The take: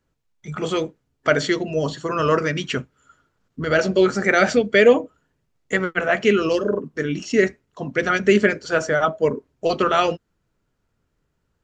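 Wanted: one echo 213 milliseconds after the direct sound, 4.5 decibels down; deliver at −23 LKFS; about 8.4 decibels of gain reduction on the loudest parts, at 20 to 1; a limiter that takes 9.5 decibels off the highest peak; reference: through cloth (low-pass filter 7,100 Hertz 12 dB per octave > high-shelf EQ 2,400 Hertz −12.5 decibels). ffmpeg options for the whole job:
ffmpeg -i in.wav -af "acompressor=threshold=-16dB:ratio=20,alimiter=limit=-17dB:level=0:latency=1,lowpass=7100,highshelf=frequency=2400:gain=-12.5,aecho=1:1:213:0.596,volume=5dB" out.wav

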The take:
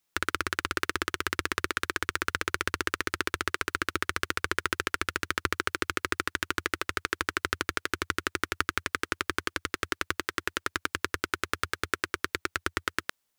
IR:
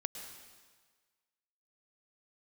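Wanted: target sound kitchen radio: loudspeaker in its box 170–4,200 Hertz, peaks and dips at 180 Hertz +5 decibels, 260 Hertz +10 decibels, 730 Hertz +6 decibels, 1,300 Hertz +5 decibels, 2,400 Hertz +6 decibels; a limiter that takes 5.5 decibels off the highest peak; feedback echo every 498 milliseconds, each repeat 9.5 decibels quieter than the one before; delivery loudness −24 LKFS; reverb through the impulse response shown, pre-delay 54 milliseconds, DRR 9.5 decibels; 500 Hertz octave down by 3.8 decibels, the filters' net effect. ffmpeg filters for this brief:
-filter_complex "[0:a]equalizer=frequency=500:width_type=o:gain=-7.5,alimiter=limit=-10dB:level=0:latency=1,aecho=1:1:498|996|1494|1992:0.335|0.111|0.0365|0.012,asplit=2[link_01][link_02];[1:a]atrim=start_sample=2205,adelay=54[link_03];[link_02][link_03]afir=irnorm=-1:irlink=0,volume=-9.5dB[link_04];[link_01][link_04]amix=inputs=2:normalize=0,highpass=170,equalizer=frequency=180:width_type=q:width=4:gain=5,equalizer=frequency=260:width_type=q:width=4:gain=10,equalizer=frequency=730:width_type=q:width=4:gain=6,equalizer=frequency=1300:width_type=q:width=4:gain=5,equalizer=frequency=2400:width_type=q:width=4:gain=6,lowpass=frequency=4200:width=0.5412,lowpass=frequency=4200:width=1.3066,volume=7.5dB"

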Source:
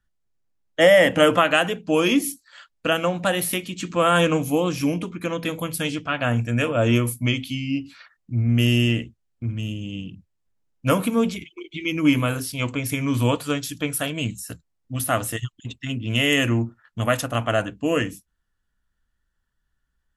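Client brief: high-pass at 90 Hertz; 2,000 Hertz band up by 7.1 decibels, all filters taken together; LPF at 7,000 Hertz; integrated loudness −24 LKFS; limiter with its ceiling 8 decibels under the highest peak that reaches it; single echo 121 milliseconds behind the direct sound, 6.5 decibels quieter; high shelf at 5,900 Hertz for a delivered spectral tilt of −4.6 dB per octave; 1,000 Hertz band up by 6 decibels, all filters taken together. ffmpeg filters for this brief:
ffmpeg -i in.wav -af "highpass=90,lowpass=7000,equalizer=frequency=1000:width_type=o:gain=5.5,equalizer=frequency=2000:width_type=o:gain=6.5,highshelf=frequency=5900:gain=7.5,alimiter=limit=-6dB:level=0:latency=1,aecho=1:1:121:0.473,volume=-4dB" out.wav

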